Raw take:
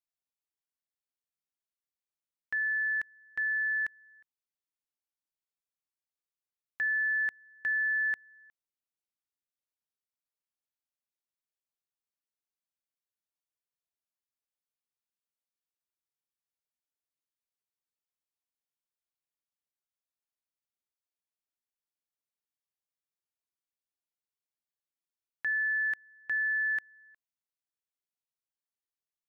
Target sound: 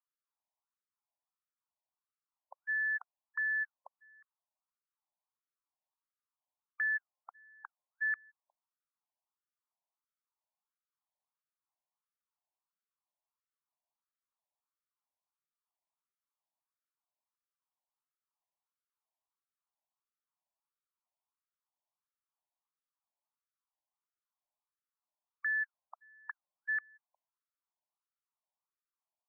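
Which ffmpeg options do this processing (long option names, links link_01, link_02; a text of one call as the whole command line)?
ffmpeg -i in.wav -af "highshelf=frequency=1500:width_type=q:width=1.5:gain=-11,afftfilt=real='re*between(b*sr/1024,750*pow(1700/750,0.5+0.5*sin(2*PI*1.5*pts/sr))/1.41,750*pow(1700/750,0.5+0.5*sin(2*PI*1.5*pts/sr))*1.41)':imag='im*between(b*sr/1024,750*pow(1700/750,0.5+0.5*sin(2*PI*1.5*pts/sr))/1.41,750*pow(1700/750,0.5+0.5*sin(2*PI*1.5*pts/sr))*1.41)':win_size=1024:overlap=0.75,volume=7dB" out.wav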